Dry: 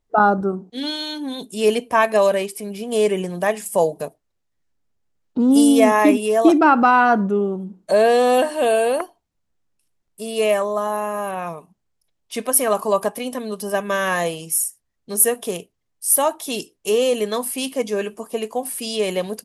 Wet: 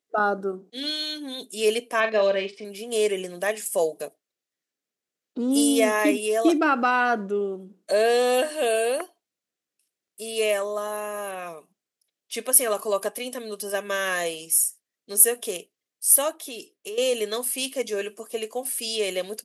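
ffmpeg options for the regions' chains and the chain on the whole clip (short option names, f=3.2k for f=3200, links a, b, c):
-filter_complex "[0:a]asettb=1/sr,asplit=3[a][b][c];[a]atrim=end=2.004[d];[b]atrim=start=2:end=2.65,asetpts=PTS-STARTPTS,afade=t=in:d=0.004:c=qsin,afade=t=out:st=0.646:d=0.004:c=qsin,lowpass=f=4.5k:w=0.5412,lowpass=f=4.5k:w=1.3066,equalizer=f=110:t=o:w=1.7:g=6.5,asplit=2[e][f];[f]adelay=41,volume=-8.5dB[g];[e][g]amix=inputs=2:normalize=0,atrim=end_sample=28665[h];[c]atrim=start=2.646[i];[d][h]acrossfade=d=0.004:c1=hsin:c2=qsin[j];[j][i]acrossfade=d=0.004:c1=qsin:c2=hsin,asettb=1/sr,asplit=3[k][l][m];[k]atrim=end=16.314[n];[l]atrim=start=16.31:end=16.98,asetpts=PTS-STARTPTS,afade=t=in:d=0.004:c=qsin,afade=t=out:st=0.666:d=0.004:c=qsin,acompressor=threshold=-26dB:ratio=8:attack=3.2:release=140:knee=1:detection=peak,equalizer=f=7.9k:w=0.42:g=-6[o];[m]atrim=start=16.976[p];[n][o]acrossfade=d=0.004:c1=hsin:c2=qsin[q];[q][p]acrossfade=d=0.004:c1=qsin:c2=hsin,highpass=400,equalizer=f=920:w=1.1:g=-9.5,bandreject=f=900:w=12"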